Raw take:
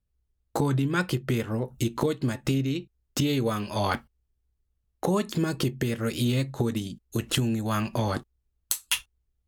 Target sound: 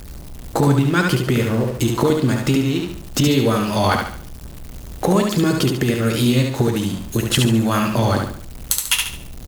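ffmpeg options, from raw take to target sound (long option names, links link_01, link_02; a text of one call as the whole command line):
ffmpeg -i in.wav -af "aeval=exprs='val(0)+0.5*0.0158*sgn(val(0))':channel_layout=same,aecho=1:1:71|142|213|284|355:0.631|0.24|0.0911|0.0346|0.0132,volume=7dB" out.wav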